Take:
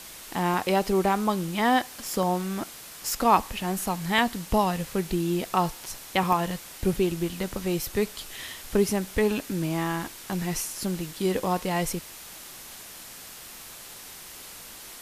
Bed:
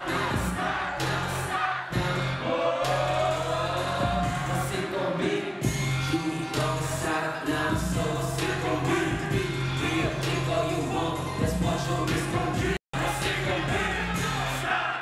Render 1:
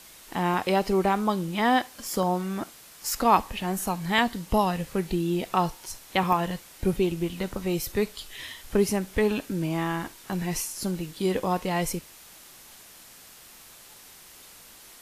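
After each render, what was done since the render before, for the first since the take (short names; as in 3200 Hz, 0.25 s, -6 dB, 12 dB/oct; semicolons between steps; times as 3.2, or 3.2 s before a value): noise print and reduce 6 dB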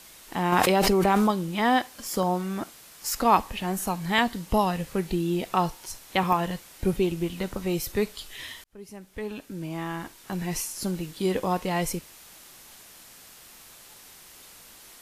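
0.52–1.31 fast leveller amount 100%; 8.64–10.69 fade in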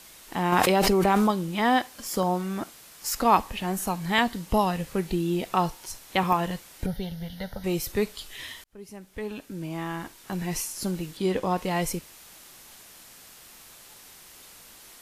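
6.86–7.64 fixed phaser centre 1700 Hz, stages 8; 11.17–11.58 high shelf 10000 Hz -10.5 dB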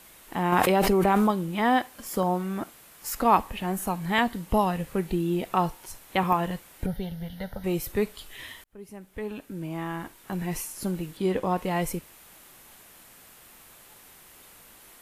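bell 5300 Hz -8 dB 1.3 oct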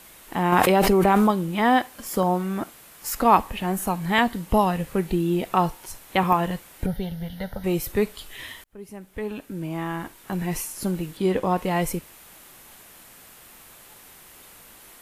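gain +3.5 dB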